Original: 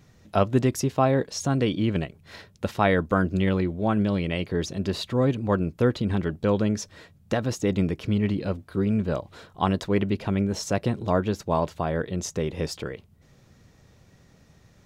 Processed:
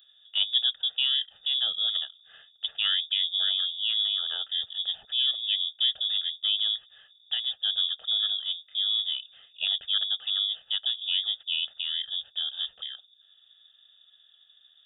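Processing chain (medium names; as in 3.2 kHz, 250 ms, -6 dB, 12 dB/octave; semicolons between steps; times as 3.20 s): frequency inversion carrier 3.6 kHz; tilt EQ +2.5 dB/octave; static phaser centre 1.5 kHz, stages 8; trim -8.5 dB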